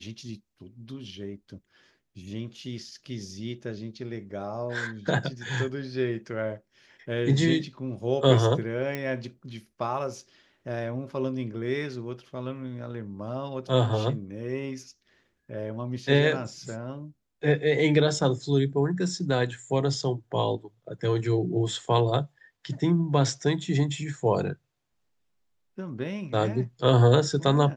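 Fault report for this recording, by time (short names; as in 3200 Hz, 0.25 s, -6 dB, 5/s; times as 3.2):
8.95 pop -17 dBFS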